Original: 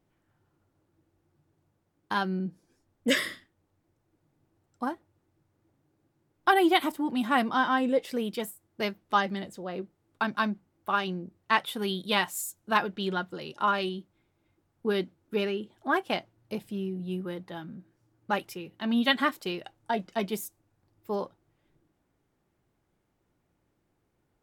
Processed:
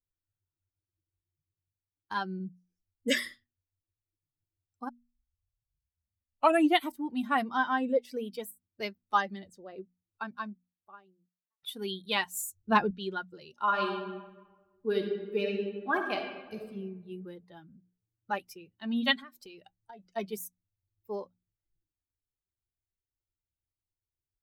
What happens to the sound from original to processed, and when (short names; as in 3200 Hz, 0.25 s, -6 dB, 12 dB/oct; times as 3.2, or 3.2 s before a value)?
4.89 tape start 1.94 s
9.64–11.63 studio fade out
12.35–12.91 low shelf 480 Hz +11.5 dB
13.64–16.64 reverb throw, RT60 1.9 s, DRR 0 dB
19.19–20.15 compressor 8:1, threshold -35 dBFS
whole clip: per-bin expansion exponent 1.5; bell 140 Hz -8 dB 0.65 oct; notches 60/120/180/240 Hz